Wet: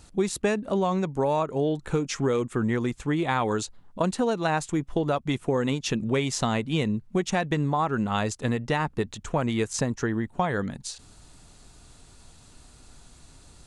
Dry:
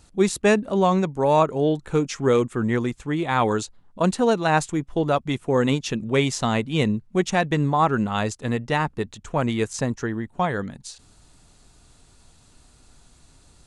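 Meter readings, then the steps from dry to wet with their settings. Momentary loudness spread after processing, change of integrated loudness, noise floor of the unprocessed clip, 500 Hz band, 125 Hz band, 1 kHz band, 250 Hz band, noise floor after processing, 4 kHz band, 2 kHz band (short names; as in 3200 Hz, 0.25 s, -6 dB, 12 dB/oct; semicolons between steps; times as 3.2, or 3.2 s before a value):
4 LU, -4.0 dB, -55 dBFS, -4.5 dB, -3.0 dB, -5.0 dB, -3.5 dB, -53 dBFS, -3.0 dB, -4.0 dB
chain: compressor, threshold -24 dBFS, peak gain reduction 11 dB; gain +2.5 dB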